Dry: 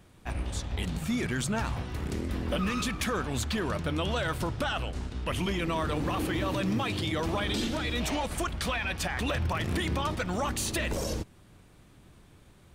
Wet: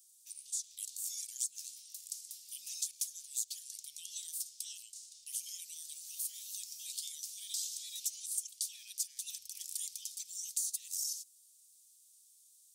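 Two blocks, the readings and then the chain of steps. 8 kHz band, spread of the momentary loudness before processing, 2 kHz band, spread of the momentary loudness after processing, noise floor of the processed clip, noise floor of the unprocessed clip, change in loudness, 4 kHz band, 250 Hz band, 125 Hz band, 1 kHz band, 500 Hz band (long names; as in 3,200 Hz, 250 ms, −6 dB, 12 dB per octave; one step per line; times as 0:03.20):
+4.0 dB, 5 LU, −31.0 dB, 9 LU, −64 dBFS, −56 dBFS, −8.5 dB, −9.5 dB, below −40 dB, below −40 dB, below −40 dB, below −40 dB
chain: inverse Chebyshev high-pass filter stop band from 1,400 Hz, stop band 70 dB
downward compressor 6 to 1, threshold −42 dBFS, peak gain reduction 10.5 dB
level +9 dB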